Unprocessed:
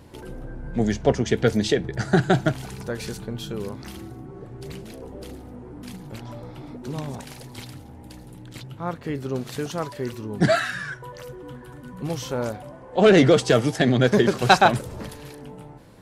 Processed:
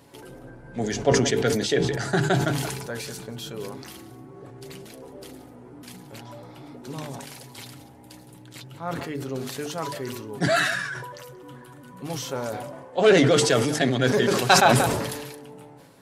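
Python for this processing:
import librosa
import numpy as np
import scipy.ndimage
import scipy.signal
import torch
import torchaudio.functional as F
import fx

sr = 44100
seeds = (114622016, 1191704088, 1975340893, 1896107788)

y = fx.highpass(x, sr, hz=210.0, slope=6)
y = fx.high_shelf(y, sr, hz=5500.0, db=4.5)
y = fx.hum_notches(y, sr, base_hz=50, count=9)
y = y + 0.36 * np.pad(y, (int(7.2 * sr / 1000.0), 0))[:len(y)]
y = y + 10.0 ** (-20.0 / 20.0) * np.pad(y, (int(182 * sr / 1000.0), 0))[:len(y)]
y = fx.sustainer(y, sr, db_per_s=39.0)
y = y * 10.0 ** (-2.5 / 20.0)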